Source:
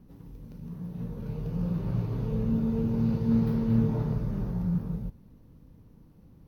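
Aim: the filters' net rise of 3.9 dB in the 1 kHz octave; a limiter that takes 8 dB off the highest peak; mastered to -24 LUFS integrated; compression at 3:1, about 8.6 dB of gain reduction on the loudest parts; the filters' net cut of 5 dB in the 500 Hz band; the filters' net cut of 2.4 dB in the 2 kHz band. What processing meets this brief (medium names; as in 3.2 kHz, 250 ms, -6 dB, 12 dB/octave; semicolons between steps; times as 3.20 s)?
peaking EQ 500 Hz -7 dB; peaking EQ 1 kHz +8 dB; peaking EQ 2 kHz -6.5 dB; compression 3:1, threshold -31 dBFS; trim +15 dB; peak limiter -15.5 dBFS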